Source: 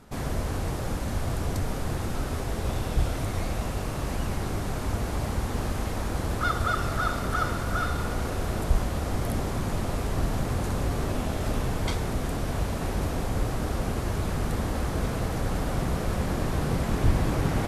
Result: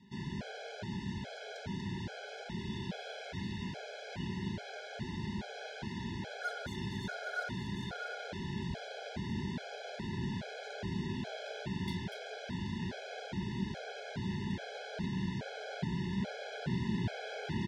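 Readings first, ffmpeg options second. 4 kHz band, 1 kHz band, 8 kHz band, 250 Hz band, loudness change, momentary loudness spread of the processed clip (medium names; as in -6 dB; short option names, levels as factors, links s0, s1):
-5.5 dB, -13.0 dB, -17.0 dB, -6.5 dB, -10.5 dB, 6 LU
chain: -filter_complex "[0:a]flanger=delay=4.7:depth=7.9:regen=83:speed=0.37:shape=triangular,highpass=150,equalizer=f=190:t=q:w=4:g=7,equalizer=f=300:t=q:w=4:g=-9,equalizer=f=500:t=q:w=4:g=-7,equalizer=f=800:t=q:w=4:g=-5,equalizer=f=1400:t=q:w=4:g=4,equalizer=f=3400:t=q:w=4:g=5,lowpass=f=5400:w=0.5412,lowpass=f=5400:w=1.3066,acrossover=split=680|1300[s0][s1][s2];[s2]asoftclip=type=tanh:threshold=0.0158[s3];[s0][s1][s3]amix=inputs=3:normalize=0,asuperstop=centerf=1200:order=8:qfactor=2.6,asplit=2[s4][s5];[s5]aecho=0:1:240:0.501[s6];[s4][s6]amix=inputs=2:normalize=0,afftfilt=real='re*gt(sin(2*PI*1.2*pts/sr)*(1-2*mod(floor(b*sr/1024/430),2)),0)':imag='im*gt(sin(2*PI*1.2*pts/sr)*(1-2*mod(floor(b*sr/1024/430),2)),0)':win_size=1024:overlap=0.75"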